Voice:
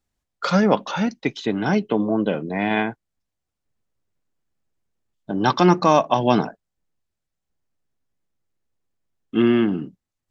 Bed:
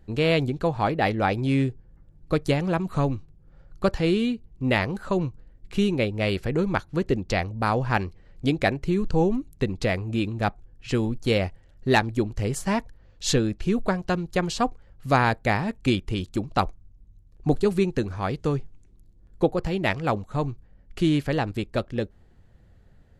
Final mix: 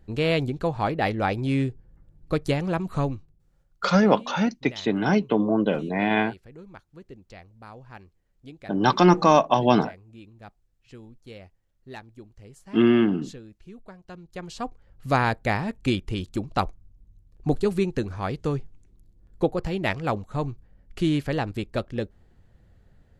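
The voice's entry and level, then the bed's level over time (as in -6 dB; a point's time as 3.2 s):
3.40 s, -1.0 dB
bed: 3.03 s -1.5 dB
3.85 s -21 dB
13.93 s -21 dB
15 s -1.5 dB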